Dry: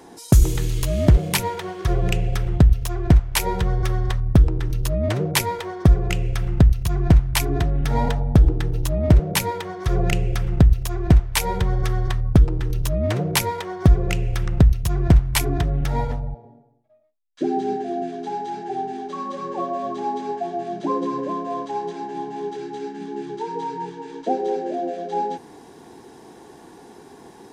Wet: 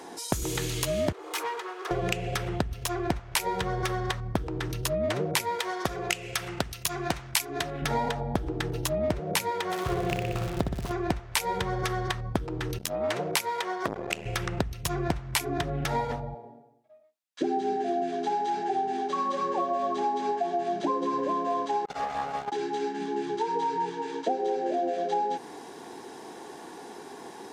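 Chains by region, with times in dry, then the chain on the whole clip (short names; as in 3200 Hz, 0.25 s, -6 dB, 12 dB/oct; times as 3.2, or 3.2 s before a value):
1.12–1.91 minimum comb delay 2.4 ms + rippled Chebyshev high-pass 300 Hz, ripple 9 dB + tube stage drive 29 dB, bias 0.3
5.59–7.82 tilt +2.5 dB/oct + Doppler distortion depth 0.12 ms
9.7–10.91 median filter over 25 samples + flutter echo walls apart 10.4 m, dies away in 0.8 s + crackle 160/s -30 dBFS
12.78–14.26 low shelf 250 Hz -11.5 dB + core saturation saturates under 1100 Hz
21.85–22.52 minimum comb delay 1.4 ms + core saturation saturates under 250 Hz
whole clip: HPF 450 Hz 6 dB/oct; high shelf 11000 Hz -5.5 dB; compressor 6:1, threshold -29 dBFS; gain +4.5 dB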